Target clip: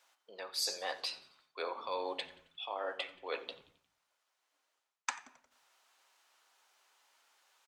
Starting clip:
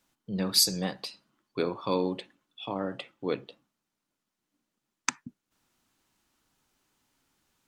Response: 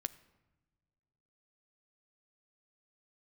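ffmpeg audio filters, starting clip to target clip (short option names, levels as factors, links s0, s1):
-filter_complex "[0:a]highpass=f=570:w=0.5412,highpass=f=570:w=1.3066,highshelf=f=8500:g=-9.5,areverse,acompressor=threshold=0.00794:ratio=5,areverse,asplit=5[s0][s1][s2][s3][s4];[s1]adelay=89,afreqshift=-97,volume=0.0944[s5];[s2]adelay=178,afreqshift=-194,volume=0.049[s6];[s3]adelay=267,afreqshift=-291,volume=0.0254[s7];[s4]adelay=356,afreqshift=-388,volume=0.0133[s8];[s0][s5][s6][s7][s8]amix=inputs=5:normalize=0[s9];[1:a]atrim=start_sample=2205,afade=t=out:st=0.42:d=0.01,atrim=end_sample=18963,asetrate=52920,aresample=44100[s10];[s9][s10]afir=irnorm=-1:irlink=0,volume=2.99"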